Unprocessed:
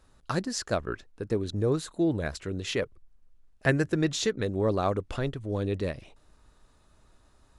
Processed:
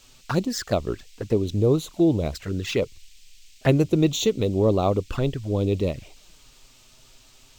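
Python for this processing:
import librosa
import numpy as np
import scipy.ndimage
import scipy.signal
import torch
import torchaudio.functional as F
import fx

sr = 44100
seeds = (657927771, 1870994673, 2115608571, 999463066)

y = fx.env_flanger(x, sr, rest_ms=8.8, full_db=-26.5)
y = fx.dmg_noise_band(y, sr, seeds[0], low_hz=2300.0, high_hz=8500.0, level_db=-62.0)
y = np.interp(np.arange(len(y)), np.arange(len(y))[::2], y[::2])
y = F.gain(torch.from_numpy(y), 7.0).numpy()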